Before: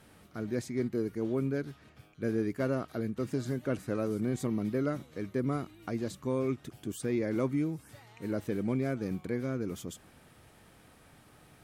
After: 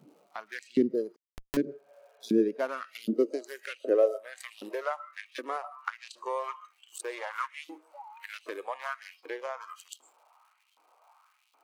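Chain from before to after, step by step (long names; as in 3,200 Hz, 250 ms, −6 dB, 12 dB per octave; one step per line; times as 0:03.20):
adaptive Wiener filter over 25 samples
convolution reverb RT60 0.60 s, pre-delay 80 ms, DRR 15.5 dB
surface crackle 230 per second −60 dBFS
auto-filter high-pass saw up 1.3 Hz 250–3,600 Hz
0:01.86–0:02.27: healed spectral selection 430–3,300 Hz before
high-pass filter sweep 160 Hz → 970 Hz, 0:02.44–0:04.86
in parallel at +0.5 dB: downward compressor, threshold −43 dBFS, peak gain reduction 22 dB
on the sum: noise reduction from a noise print of the clip's start 13 dB
0:01.16–0:01.57: comparator with hysteresis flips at −33 dBFS
0:02.89–0:03.73: high-shelf EQ 4,700 Hz +7.5 dB
one half of a high-frequency compander encoder only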